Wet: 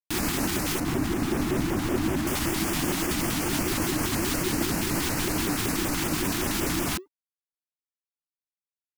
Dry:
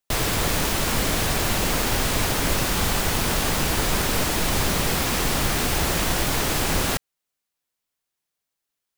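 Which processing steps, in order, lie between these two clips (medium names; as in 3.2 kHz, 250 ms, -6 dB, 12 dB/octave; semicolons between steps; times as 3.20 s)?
0.80–2.27 s: treble shelf 2.2 kHz -11 dB; peak limiter -16.5 dBFS, peak gain reduction 6.5 dB; frequency shift -350 Hz; LFO notch square 5.3 Hz 550–3700 Hz; crossover distortion -58.5 dBFS; vibrato with a chosen wave saw up 5.1 Hz, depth 250 cents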